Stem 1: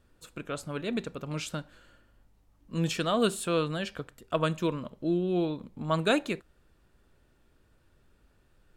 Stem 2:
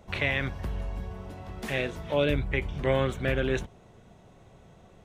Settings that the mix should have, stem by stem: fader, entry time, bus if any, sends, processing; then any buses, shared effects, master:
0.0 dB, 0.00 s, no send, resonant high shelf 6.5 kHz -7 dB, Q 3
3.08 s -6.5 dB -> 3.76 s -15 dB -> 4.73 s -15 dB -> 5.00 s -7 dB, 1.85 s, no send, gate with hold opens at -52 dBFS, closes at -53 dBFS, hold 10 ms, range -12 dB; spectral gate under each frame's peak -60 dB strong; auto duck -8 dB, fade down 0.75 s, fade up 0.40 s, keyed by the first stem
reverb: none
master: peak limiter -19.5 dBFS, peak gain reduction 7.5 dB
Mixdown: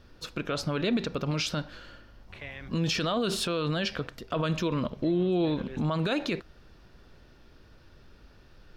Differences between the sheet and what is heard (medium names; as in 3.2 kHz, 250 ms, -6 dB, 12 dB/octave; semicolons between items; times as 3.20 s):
stem 1 0.0 dB -> +10.0 dB; stem 2: entry 1.85 s -> 2.20 s